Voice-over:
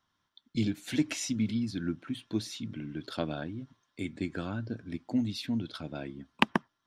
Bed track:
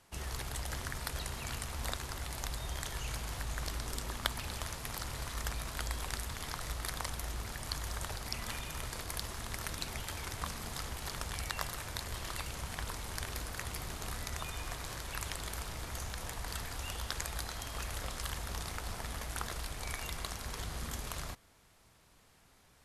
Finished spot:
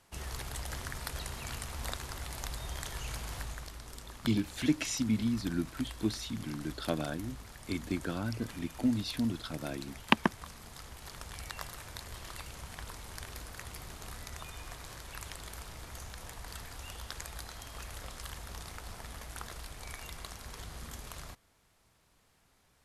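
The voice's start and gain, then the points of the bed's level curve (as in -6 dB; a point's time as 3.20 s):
3.70 s, 0.0 dB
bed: 3.42 s -0.5 dB
3.70 s -8 dB
10.77 s -8 dB
11.48 s -4.5 dB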